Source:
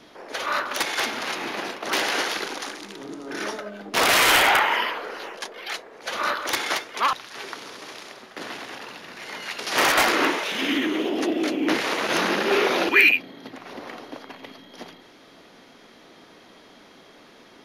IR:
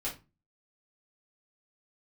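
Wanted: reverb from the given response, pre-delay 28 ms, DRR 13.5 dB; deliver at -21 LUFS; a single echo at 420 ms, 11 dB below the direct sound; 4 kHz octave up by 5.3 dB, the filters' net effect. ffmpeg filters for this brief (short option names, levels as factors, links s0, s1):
-filter_complex "[0:a]equalizer=f=4000:t=o:g=7,aecho=1:1:420:0.282,asplit=2[s0][s1];[1:a]atrim=start_sample=2205,adelay=28[s2];[s1][s2]afir=irnorm=-1:irlink=0,volume=0.15[s3];[s0][s3]amix=inputs=2:normalize=0,volume=0.891"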